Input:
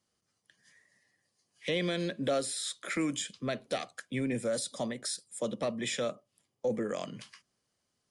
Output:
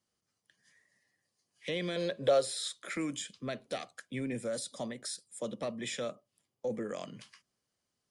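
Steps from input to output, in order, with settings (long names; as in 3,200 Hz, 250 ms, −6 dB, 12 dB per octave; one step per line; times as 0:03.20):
0:01.96–0:02.68: octave-band graphic EQ 125/250/500/1,000/4,000 Hz +4/−9/+10/+5/+5 dB
level −4 dB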